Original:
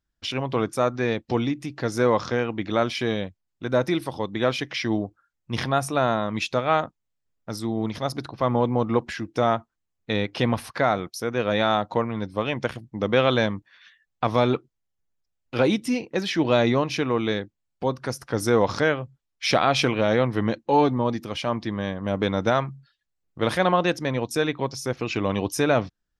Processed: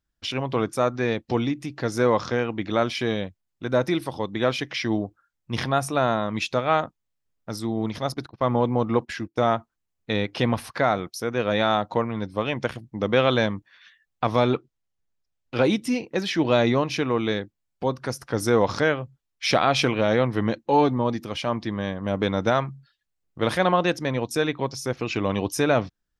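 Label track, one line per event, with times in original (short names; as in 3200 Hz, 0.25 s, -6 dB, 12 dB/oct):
8.140000	9.560000	gate -37 dBFS, range -19 dB
14.450000	15.610000	LPF 8000 Hz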